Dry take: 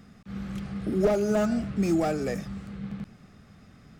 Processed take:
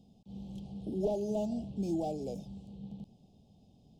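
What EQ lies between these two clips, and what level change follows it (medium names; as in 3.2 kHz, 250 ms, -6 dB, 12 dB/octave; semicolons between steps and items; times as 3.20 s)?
elliptic band-stop 830–3100 Hz, stop band 60 dB; bass shelf 160 Hz -3 dB; treble shelf 5.8 kHz -8 dB; -7.5 dB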